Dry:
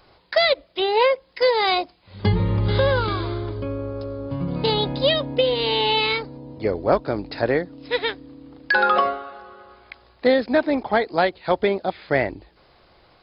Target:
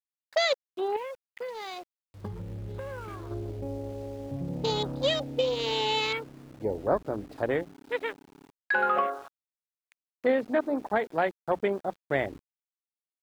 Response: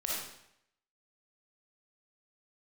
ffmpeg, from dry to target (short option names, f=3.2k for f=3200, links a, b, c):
-filter_complex "[0:a]bandreject=f=60:t=h:w=6,bandreject=f=120:t=h:w=6,bandreject=f=180:t=h:w=6,bandreject=f=240:t=h:w=6,bandreject=f=300:t=h:w=6,afwtdn=0.0447,asettb=1/sr,asplit=3[a][b][c];[a]atrim=end=0.964[d];[b]atrim=start=0.96:end=3.31,asetpts=PTS-STARTPTS,afade=t=in:d=0.004:c=qsin,afade=t=out:st=2.346:d=0.004:c=qsin,acompressor=threshold=-30dB:ratio=4[e];[c]atrim=start=3.306[f];[d][e]acrossfade=d=0.004:c1=hsin:c2=qsin[g];[g][f]acrossfade=d=0.004:c1=qsin:c2=hsin,aeval=exprs='val(0)*gte(abs(val(0)),0.0075)':c=same,volume=-7dB"